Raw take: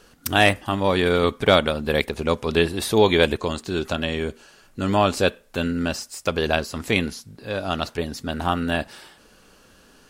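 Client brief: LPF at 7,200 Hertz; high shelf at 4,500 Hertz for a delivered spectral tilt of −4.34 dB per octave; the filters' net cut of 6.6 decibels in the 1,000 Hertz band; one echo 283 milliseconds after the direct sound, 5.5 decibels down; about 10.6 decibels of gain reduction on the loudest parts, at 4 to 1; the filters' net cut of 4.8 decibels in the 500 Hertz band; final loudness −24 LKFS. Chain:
low-pass filter 7,200 Hz
parametric band 500 Hz −4 dB
parametric band 1,000 Hz −7.5 dB
high-shelf EQ 4,500 Hz −5 dB
downward compressor 4 to 1, threshold −28 dBFS
single-tap delay 283 ms −5.5 dB
level +8 dB

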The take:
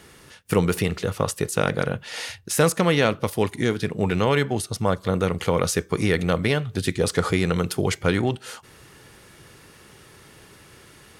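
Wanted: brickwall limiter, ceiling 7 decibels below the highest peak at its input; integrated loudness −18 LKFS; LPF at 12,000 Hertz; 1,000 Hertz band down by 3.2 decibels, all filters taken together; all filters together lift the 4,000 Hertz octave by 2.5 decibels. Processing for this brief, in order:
low-pass filter 12,000 Hz
parametric band 1,000 Hz −4.5 dB
parametric band 4,000 Hz +3.5 dB
level +8.5 dB
brickwall limiter −5.5 dBFS

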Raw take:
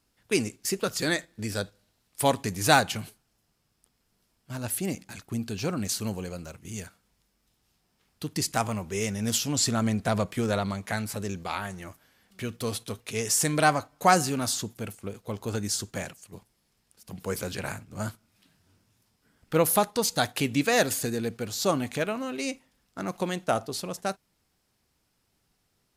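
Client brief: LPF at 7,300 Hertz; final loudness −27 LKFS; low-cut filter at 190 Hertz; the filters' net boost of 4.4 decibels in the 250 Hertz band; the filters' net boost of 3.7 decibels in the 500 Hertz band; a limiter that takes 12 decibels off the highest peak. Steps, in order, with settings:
high-pass filter 190 Hz
low-pass filter 7,300 Hz
parametric band 250 Hz +6.5 dB
parametric band 500 Hz +3 dB
level +2 dB
brickwall limiter −12 dBFS

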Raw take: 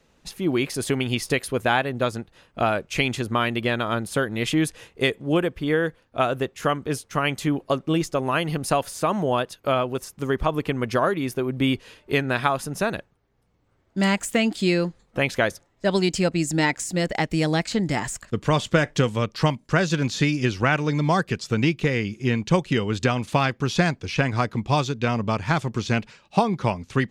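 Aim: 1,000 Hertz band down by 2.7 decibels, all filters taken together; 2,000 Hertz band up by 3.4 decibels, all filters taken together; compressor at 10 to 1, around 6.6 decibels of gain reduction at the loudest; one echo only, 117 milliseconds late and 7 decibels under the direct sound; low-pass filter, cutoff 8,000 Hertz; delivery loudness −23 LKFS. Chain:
low-pass filter 8,000 Hz
parametric band 1,000 Hz −5.5 dB
parametric band 2,000 Hz +6 dB
downward compressor 10 to 1, threshold −21 dBFS
single-tap delay 117 ms −7 dB
level +4 dB

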